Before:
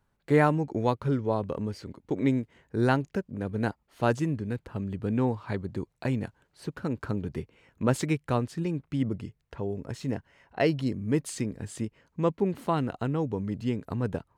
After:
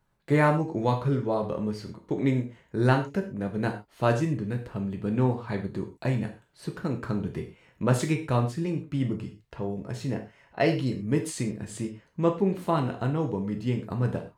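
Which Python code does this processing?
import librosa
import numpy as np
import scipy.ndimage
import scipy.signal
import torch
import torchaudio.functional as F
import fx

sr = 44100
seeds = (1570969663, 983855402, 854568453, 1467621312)

y = fx.rev_gated(x, sr, seeds[0], gate_ms=150, shape='falling', drr_db=2.5)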